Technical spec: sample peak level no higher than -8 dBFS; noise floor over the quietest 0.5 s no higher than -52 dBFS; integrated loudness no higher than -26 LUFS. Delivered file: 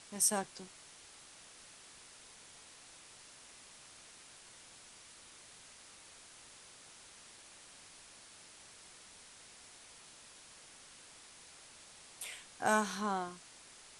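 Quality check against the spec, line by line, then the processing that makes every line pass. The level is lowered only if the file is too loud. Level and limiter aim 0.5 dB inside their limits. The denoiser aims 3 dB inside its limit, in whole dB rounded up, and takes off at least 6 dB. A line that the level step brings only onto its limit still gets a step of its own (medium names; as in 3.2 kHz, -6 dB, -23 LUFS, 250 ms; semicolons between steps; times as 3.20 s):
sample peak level -16.5 dBFS: pass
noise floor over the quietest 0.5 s -57 dBFS: pass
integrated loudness -35.5 LUFS: pass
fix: none needed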